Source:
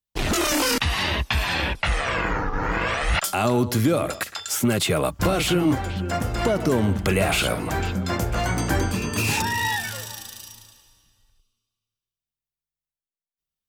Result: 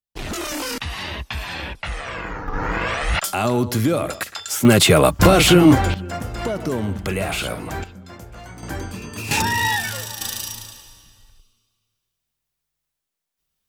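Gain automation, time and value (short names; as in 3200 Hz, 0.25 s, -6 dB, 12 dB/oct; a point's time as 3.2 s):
-5.5 dB
from 2.48 s +1 dB
from 4.65 s +9 dB
from 5.94 s -3 dB
from 7.84 s -14.5 dB
from 8.63 s -7 dB
from 9.31 s +4 dB
from 10.21 s +11.5 dB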